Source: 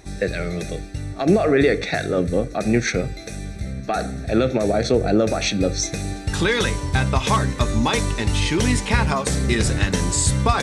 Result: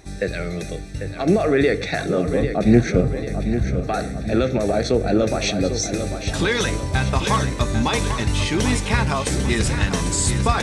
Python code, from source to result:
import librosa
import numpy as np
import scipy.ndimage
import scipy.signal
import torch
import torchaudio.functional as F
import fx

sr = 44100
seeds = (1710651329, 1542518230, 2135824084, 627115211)

p1 = fx.tilt_shelf(x, sr, db=7.5, hz=930.0, at=(2.42, 3.82))
p2 = p1 + fx.echo_feedback(p1, sr, ms=795, feedback_pct=51, wet_db=-9.0, dry=0)
y = p2 * 10.0 ** (-1.0 / 20.0)